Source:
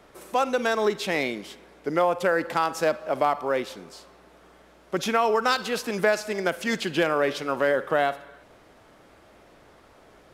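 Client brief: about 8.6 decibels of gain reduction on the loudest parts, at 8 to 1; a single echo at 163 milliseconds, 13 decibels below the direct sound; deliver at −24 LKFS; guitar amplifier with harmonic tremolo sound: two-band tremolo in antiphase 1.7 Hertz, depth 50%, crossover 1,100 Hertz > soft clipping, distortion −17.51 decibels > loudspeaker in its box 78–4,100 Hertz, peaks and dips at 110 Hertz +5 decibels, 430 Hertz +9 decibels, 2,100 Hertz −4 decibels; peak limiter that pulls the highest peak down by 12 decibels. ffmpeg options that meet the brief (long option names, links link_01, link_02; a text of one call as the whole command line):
ffmpeg -i in.wav -filter_complex "[0:a]acompressor=threshold=-26dB:ratio=8,alimiter=level_in=1dB:limit=-24dB:level=0:latency=1,volume=-1dB,aecho=1:1:163:0.224,acrossover=split=1100[link_01][link_02];[link_01]aeval=exprs='val(0)*(1-0.5/2+0.5/2*cos(2*PI*1.7*n/s))':channel_layout=same[link_03];[link_02]aeval=exprs='val(0)*(1-0.5/2-0.5/2*cos(2*PI*1.7*n/s))':channel_layout=same[link_04];[link_03][link_04]amix=inputs=2:normalize=0,asoftclip=threshold=-30dB,highpass=78,equalizer=frequency=110:width_type=q:width=4:gain=5,equalizer=frequency=430:width_type=q:width=4:gain=9,equalizer=frequency=2100:width_type=q:width=4:gain=-4,lowpass=frequency=4100:width=0.5412,lowpass=frequency=4100:width=1.3066,volume=12.5dB" out.wav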